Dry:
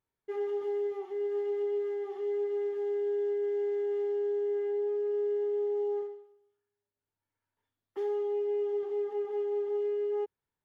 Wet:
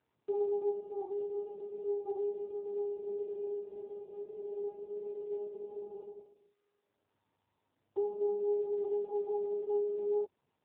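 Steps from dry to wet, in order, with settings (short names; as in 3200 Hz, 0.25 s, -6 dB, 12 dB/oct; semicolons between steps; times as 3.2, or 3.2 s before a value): elliptic low-pass 940 Hz, stop band 60 dB; gain +3.5 dB; AMR-NB 7.95 kbps 8000 Hz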